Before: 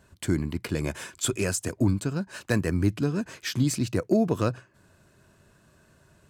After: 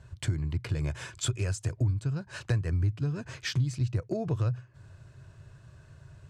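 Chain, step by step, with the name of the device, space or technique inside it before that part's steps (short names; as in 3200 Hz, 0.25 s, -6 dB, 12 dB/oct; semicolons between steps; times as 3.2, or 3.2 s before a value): jukebox (LPF 7000 Hz 12 dB/oct; resonant low shelf 160 Hz +8.5 dB, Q 3; compressor 3:1, threshold -29 dBFS, peak gain reduction 15.5 dB)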